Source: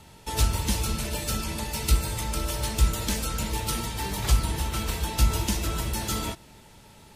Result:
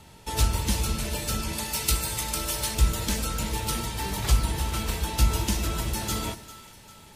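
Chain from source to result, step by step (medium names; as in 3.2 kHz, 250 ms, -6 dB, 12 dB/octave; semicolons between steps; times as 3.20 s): 1.53–2.75 s: tilt EQ +1.5 dB/octave; two-band feedback delay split 1.1 kHz, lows 105 ms, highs 398 ms, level -16 dB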